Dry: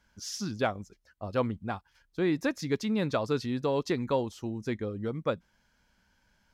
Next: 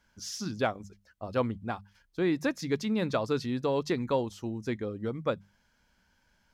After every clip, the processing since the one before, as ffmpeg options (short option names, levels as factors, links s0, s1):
-af "deesser=0.75,bandreject=f=50:t=h:w=6,bandreject=f=100:t=h:w=6,bandreject=f=150:t=h:w=6,bandreject=f=200:t=h:w=6"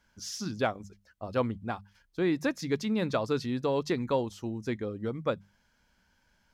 -af anull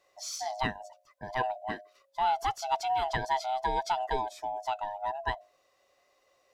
-af "afftfilt=real='real(if(lt(b,1008),b+24*(1-2*mod(floor(b/24),2)),b),0)':imag='imag(if(lt(b,1008),b+24*(1-2*mod(floor(b/24),2)),b),0)':win_size=2048:overlap=0.75,bass=f=250:g=-7,treble=f=4000:g=1"